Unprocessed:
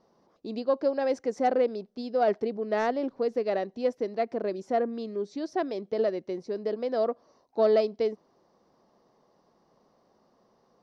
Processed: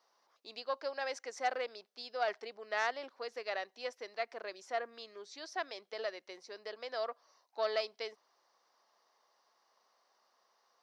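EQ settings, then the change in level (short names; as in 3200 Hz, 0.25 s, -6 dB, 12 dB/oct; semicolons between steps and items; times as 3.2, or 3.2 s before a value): HPF 1300 Hz 12 dB/oct; +2.0 dB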